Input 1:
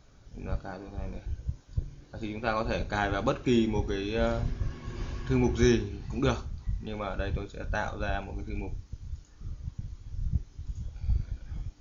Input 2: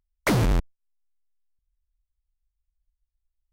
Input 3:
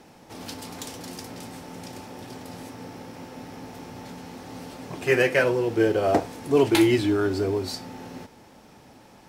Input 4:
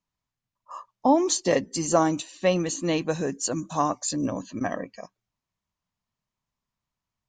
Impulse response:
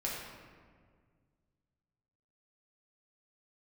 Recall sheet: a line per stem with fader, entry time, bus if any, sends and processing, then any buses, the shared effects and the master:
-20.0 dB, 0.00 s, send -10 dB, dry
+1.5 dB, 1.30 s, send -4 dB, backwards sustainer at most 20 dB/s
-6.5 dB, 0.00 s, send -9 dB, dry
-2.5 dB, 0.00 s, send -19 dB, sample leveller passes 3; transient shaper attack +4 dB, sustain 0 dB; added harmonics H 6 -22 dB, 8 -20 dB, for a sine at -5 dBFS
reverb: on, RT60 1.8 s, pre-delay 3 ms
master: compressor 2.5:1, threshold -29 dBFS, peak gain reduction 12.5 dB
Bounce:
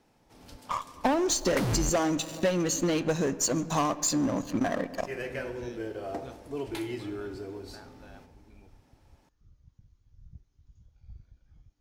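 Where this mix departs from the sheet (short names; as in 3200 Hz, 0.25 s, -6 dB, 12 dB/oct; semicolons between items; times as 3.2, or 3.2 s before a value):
stem 1: send off; stem 2: send off; stem 3 -6.5 dB -> -17.5 dB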